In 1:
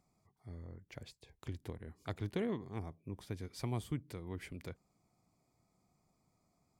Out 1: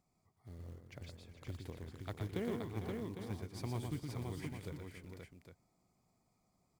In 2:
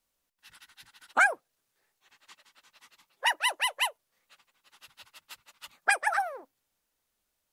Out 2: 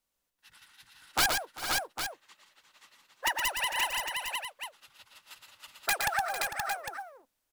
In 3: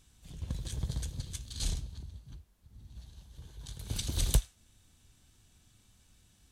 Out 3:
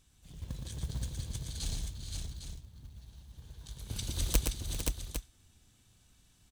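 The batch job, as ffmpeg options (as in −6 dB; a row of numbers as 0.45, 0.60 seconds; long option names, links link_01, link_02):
-af "aeval=exprs='(mod(5.62*val(0)+1,2)-1)/5.62':channel_layout=same,aecho=1:1:117|393|451|524|805:0.562|0.141|0.282|0.631|0.355,acrusher=bits=6:mode=log:mix=0:aa=0.000001,volume=-3.5dB"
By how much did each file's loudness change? −1.0, −3.5, −1.5 LU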